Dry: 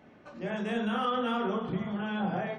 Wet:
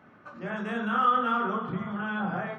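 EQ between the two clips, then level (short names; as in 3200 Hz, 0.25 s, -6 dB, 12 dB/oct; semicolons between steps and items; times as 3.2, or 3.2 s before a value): HPF 98 Hz 12 dB/oct; low shelf 160 Hz +11 dB; bell 1300 Hz +14 dB 0.88 oct; -4.5 dB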